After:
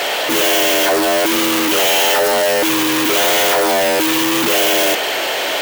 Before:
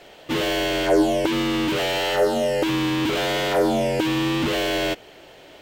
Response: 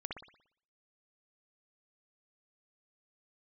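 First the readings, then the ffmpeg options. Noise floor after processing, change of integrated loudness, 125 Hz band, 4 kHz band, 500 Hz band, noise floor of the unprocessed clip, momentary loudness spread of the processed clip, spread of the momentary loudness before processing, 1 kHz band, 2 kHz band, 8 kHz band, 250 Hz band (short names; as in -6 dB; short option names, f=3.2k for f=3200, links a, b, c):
-19 dBFS, +8.5 dB, -6.0 dB, +10.5 dB, +6.0 dB, -47 dBFS, 3 LU, 4 LU, +9.0 dB, +10.5 dB, +17.5 dB, +3.0 dB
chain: -filter_complex "[0:a]asplit=2[a][b];[b]highpass=f=720:p=1,volume=41dB,asoftclip=type=tanh:threshold=-7.5dB[c];[a][c]amix=inputs=2:normalize=0,lowpass=f=1.4k:p=1,volume=-6dB,aemphasis=mode=production:type=riaa,volume=1dB"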